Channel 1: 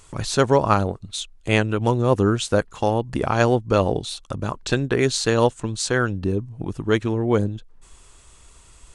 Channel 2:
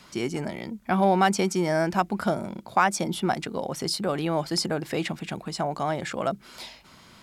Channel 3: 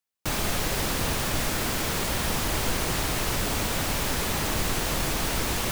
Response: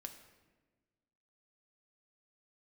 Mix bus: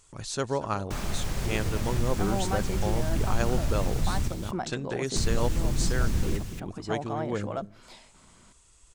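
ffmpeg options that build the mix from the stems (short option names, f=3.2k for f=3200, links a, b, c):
-filter_complex "[0:a]volume=-12dB,asplit=2[a][b];[b]volume=-17.5dB[c];[1:a]adelay=1300,volume=-5.5dB,asplit=2[d][e];[e]volume=-18dB[f];[2:a]asubboost=boost=8:cutoff=220,adelay=650,volume=-7dB,asplit=3[g][h][i];[g]atrim=end=4.28,asetpts=PTS-STARTPTS,afade=t=out:st=4.276:d=0.004:c=hsin[j];[h]atrim=start=4.28:end=5.16,asetpts=PTS-STARTPTS,volume=0[k];[i]atrim=start=5.16,asetpts=PTS-STARTPTS,afade=t=in:d=0.004:c=hsin[l];[j][k][l]concat=n=3:v=0:a=1,asplit=3[m][n][o];[n]volume=-7.5dB[p];[o]volume=-14.5dB[q];[d][m]amix=inputs=2:normalize=0,lowpass=f=1.5k:p=1,alimiter=limit=-21.5dB:level=0:latency=1:release=444,volume=0dB[r];[3:a]atrim=start_sample=2205[s];[f][p]amix=inputs=2:normalize=0[t];[t][s]afir=irnorm=-1:irlink=0[u];[c][q]amix=inputs=2:normalize=0,aecho=0:1:231:1[v];[a][r][u][v]amix=inputs=4:normalize=0,equalizer=f=6.9k:t=o:w=1.2:g=6"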